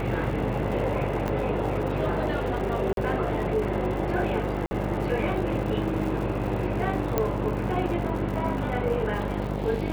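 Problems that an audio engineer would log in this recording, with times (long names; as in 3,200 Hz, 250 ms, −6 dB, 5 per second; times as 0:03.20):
mains buzz 50 Hz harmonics 18 −31 dBFS
surface crackle 180 per second −35 dBFS
0:01.28: click −16 dBFS
0:02.93–0:02.97: drop-out 42 ms
0:04.66–0:04.71: drop-out 50 ms
0:07.18: click −10 dBFS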